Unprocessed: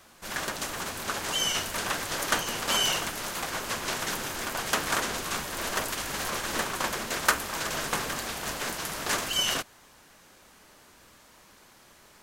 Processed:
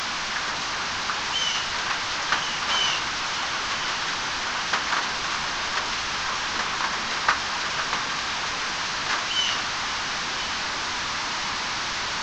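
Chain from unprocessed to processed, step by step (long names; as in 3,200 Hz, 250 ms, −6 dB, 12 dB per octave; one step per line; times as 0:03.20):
linear delta modulator 32 kbit/s, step −24 dBFS
low shelf with overshoot 740 Hz −6.5 dB, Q 1.5
delay that swaps between a low-pass and a high-pass 509 ms, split 2,400 Hz, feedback 76%, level −11 dB
level +2.5 dB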